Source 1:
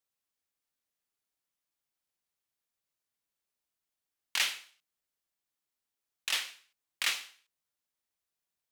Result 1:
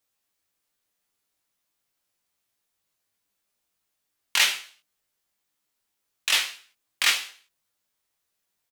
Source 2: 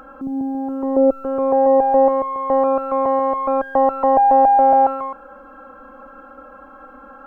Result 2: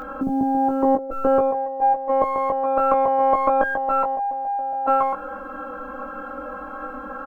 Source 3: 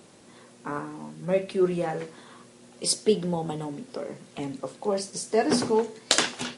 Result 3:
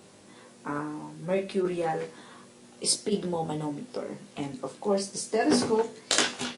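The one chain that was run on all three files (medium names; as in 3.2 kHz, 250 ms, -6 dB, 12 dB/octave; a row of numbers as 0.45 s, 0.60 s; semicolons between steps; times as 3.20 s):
compressor with a negative ratio -20 dBFS, ratio -0.5; on a send: early reflections 10 ms -12 dB, 20 ms -4.5 dB; on the sum: peak normalisation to -6 dBFS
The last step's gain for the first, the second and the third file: +8.0 dB, +1.5 dB, -2.0 dB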